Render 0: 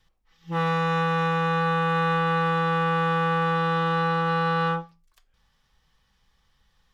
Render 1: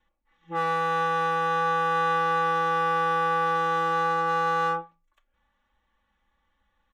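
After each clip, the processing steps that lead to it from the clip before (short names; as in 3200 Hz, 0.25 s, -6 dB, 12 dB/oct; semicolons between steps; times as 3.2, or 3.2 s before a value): Wiener smoothing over 9 samples; low shelf 98 Hz -10.5 dB; comb 3.5 ms, depth 94%; gain -3.5 dB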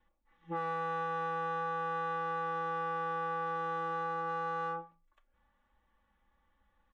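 high shelf 2800 Hz -11.5 dB; compressor 6:1, threshold -34 dBFS, peak gain reduction 10 dB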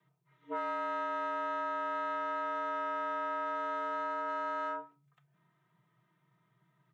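frequency shift +120 Hz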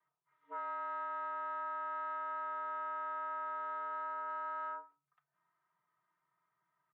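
band-pass 1200 Hz, Q 1.5; gain -3 dB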